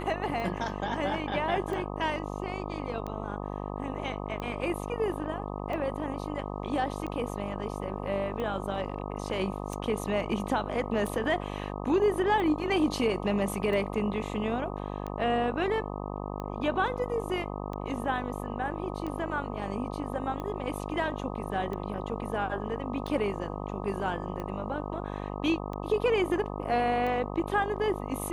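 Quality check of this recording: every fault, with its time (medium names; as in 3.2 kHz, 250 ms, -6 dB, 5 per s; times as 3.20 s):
buzz 50 Hz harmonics 25 -36 dBFS
tick 45 rpm -24 dBFS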